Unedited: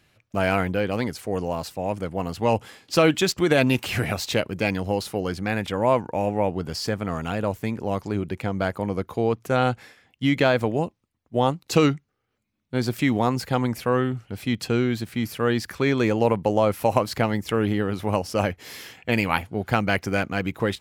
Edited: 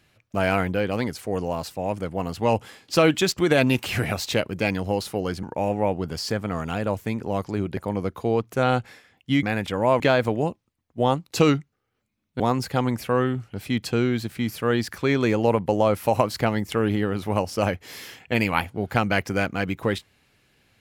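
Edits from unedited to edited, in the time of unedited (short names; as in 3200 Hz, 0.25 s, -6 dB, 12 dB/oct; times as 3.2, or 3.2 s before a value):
5.43–6 move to 10.36
8.34–8.7 cut
12.76–13.17 cut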